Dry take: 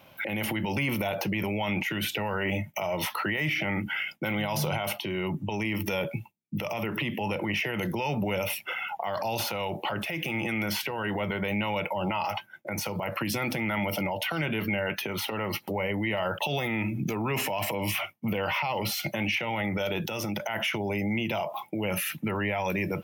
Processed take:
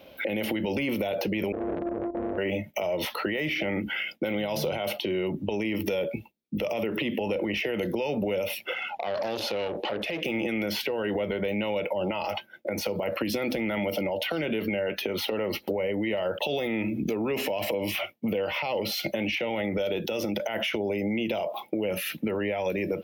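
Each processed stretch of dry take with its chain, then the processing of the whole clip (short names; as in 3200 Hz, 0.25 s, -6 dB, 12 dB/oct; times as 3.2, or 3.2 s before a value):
1.52–2.38 sample sorter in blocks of 128 samples + Chebyshev low-pass 1000 Hz, order 10 + core saturation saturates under 970 Hz
8.74–10.25 LPF 10000 Hz + core saturation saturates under 1400 Hz
whole clip: graphic EQ 125/250/500/1000/4000/8000 Hz -9/+6/+11/-6/+6/-6 dB; compressor, threshold -25 dBFS; bell 62 Hz +13.5 dB 0.67 oct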